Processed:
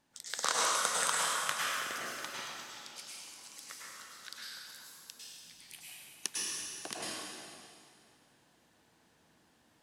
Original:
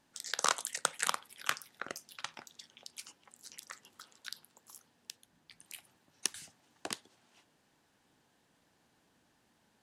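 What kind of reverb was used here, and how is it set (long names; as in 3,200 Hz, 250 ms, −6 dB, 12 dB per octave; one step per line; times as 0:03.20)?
dense smooth reverb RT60 2.3 s, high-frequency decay 0.95×, pre-delay 90 ms, DRR −6.5 dB
level −3.5 dB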